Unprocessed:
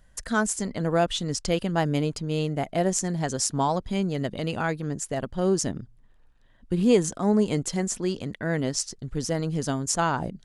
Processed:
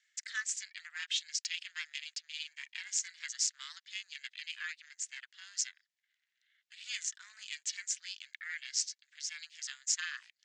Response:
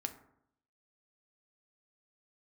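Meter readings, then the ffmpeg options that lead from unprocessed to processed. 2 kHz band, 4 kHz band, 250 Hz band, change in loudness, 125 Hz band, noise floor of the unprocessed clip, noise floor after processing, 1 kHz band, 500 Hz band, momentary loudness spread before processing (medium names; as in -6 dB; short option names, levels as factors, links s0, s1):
-6.0 dB, -3.0 dB, under -40 dB, -11.5 dB, under -40 dB, -57 dBFS, under -85 dBFS, -30.0 dB, under -40 dB, 7 LU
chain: -af "aeval=exprs='0.422*(cos(1*acos(clip(val(0)/0.422,-1,1)))-cos(1*PI/2))+0.00841*(cos(8*acos(clip(val(0)/0.422,-1,1)))-cos(8*PI/2))':c=same,aeval=exprs='val(0)*sin(2*PI*240*n/s)':c=same,asuperpass=centerf=3700:order=12:qfactor=0.63"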